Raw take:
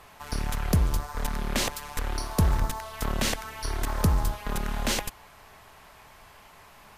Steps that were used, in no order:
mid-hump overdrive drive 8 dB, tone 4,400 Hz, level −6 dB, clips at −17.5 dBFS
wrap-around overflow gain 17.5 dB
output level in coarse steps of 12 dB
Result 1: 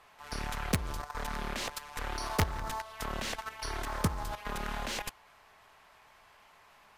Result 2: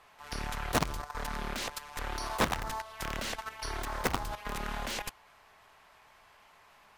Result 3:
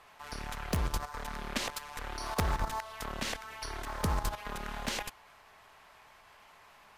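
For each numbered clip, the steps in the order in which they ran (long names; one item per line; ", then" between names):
mid-hump overdrive, then output level in coarse steps, then wrap-around overflow
wrap-around overflow, then mid-hump overdrive, then output level in coarse steps
output level in coarse steps, then wrap-around overflow, then mid-hump overdrive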